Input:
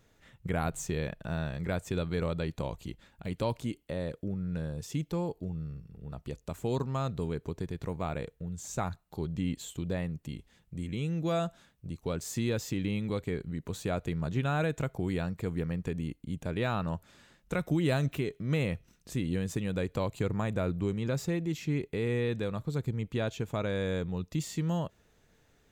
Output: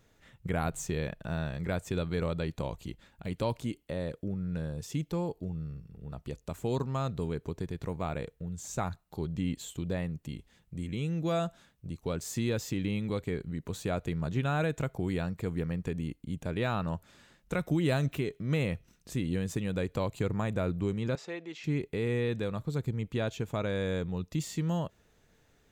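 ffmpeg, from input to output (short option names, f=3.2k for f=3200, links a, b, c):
-filter_complex "[0:a]asettb=1/sr,asplit=3[a][b][c];[a]atrim=end=21.154[d];[b]atrim=start=21.15:end=21.64,asetpts=PTS-STARTPTS,afade=t=in:d=0.004:c=qsin,afade=t=out:st=0.486:d=0.004:c=qsin,highpass=500,lowpass=4.2k[e];[c]atrim=start=21.636[f];[d][e]acrossfade=d=0.004:c1=hsin:c2=qsin[g];[g][f]acrossfade=d=0.004:c1=qsin:c2=hsin"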